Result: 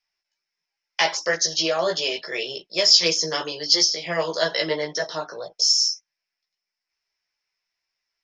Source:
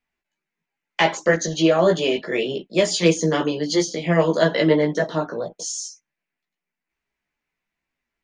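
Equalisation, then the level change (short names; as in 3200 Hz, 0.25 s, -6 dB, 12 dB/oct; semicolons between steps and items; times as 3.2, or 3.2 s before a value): synth low-pass 5300 Hz, resonance Q 15; low shelf 150 Hz -11.5 dB; bell 240 Hz -14.5 dB 1.1 oct; -2.5 dB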